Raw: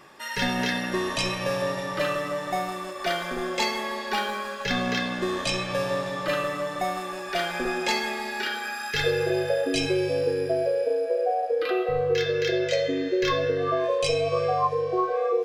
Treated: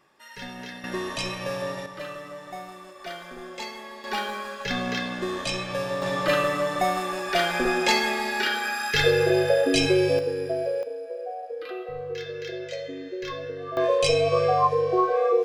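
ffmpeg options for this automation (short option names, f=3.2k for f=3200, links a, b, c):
-af "asetnsamples=n=441:p=0,asendcmd='0.84 volume volume -3.5dB;1.86 volume volume -10dB;4.04 volume volume -2dB;6.02 volume volume 4dB;10.19 volume volume -2.5dB;10.83 volume volume -9.5dB;13.77 volume volume 3dB',volume=-12.5dB"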